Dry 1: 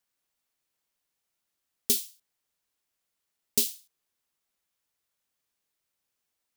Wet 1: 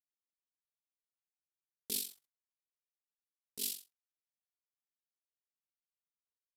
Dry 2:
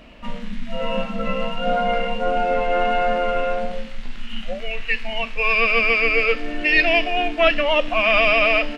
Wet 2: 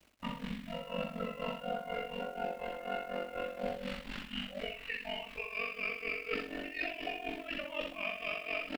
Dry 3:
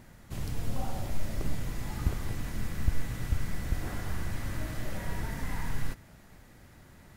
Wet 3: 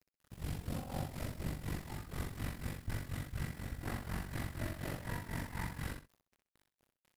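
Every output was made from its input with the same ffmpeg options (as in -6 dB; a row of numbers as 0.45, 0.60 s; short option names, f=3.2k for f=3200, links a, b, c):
-af "highpass=45,agate=range=-18dB:threshold=-43dB:ratio=16:detection=peak,adynamicequalizer=threshold=0.0355:dfrequency=900:dqfactor=0.82:tfrequency=900:tqfactor=0.82:attack=5:release=100:ratio=0.375:range=2:mode=cutabove:tftype=bell,aresample=32000,aresample=44100,alimiter=limit=-15.5dB:level=0:latency=1:release=23,areverse,acompressor=threshold=-33dB:ratio=20,areverse,equalizer=f=6.4k:w=4.4:g=-6,tremolo=f=4.1:d=0.87,acrusher=bits=10:mix=0:aa=0.000001,aeval=exprs='val(0)*sin(2*PI*23*n/s)':c=same,aecho=1:1:61|127:0.531|0.133,volume=3.5dB"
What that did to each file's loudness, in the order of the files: -11.0, -19.5, -6.0 LU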